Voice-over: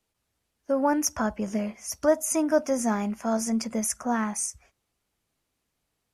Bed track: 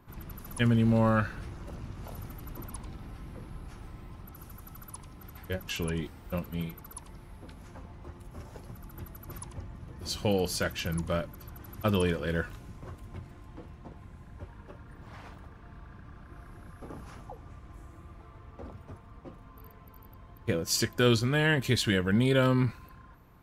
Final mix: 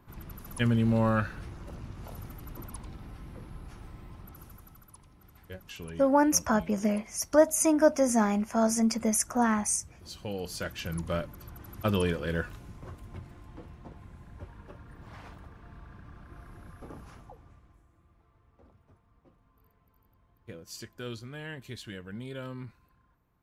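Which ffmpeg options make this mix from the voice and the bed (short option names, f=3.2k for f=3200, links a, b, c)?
-filter_complex "[0:a]adelay=5300,volume=1dB[a];[1:a]volume=8dB,afade=t=out:st=4.32:d=0.54:silence=0.375837,afade=t=in:st=10.29:d=0.93:silence=0.354813,afade=t=out:st=16.72:d=1.11:silence=0.177828[b];[a][b]amix=inputs=2:normalize=0"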